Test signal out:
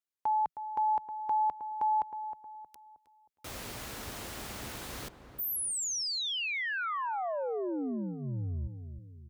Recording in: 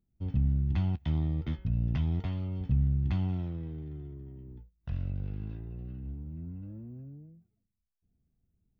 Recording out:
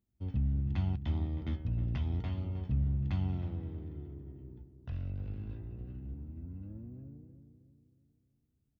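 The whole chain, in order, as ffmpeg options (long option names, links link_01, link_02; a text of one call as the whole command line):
ffmpeg -i in.wav -filter_complex "[0:a]highpass=48,equalizer=frequency=160:width=7.1:gain=-13,asplit=2[link_01][link_02];[link_02]adelay=314,lowpass=frequency=1200:poles=1,volume=-9dB,asplit=2[link_03][link_04];[link_04]adelay=314,lowpass=frequency=1200:poles=1,volume=0.47,asplit=2[link_05][link_06];[link_06]adelay=314,lowpass=frequency=1200:poles=1,volume=0.47,asplit=2[link_07][link_08];[link_08]adelay=314,lowpass=frequency=1200:poles=1,volume=0.47,asplit=2[link_09][link_10];[link_10]adelay=314,lowpass=frequency=1200:poles=1,volume=0.47[link_11];[link_01][link_03][link_05][link_07][link_09][link_11]amix=inputs=6:normalize=0,volume=-2.5dB" out.wav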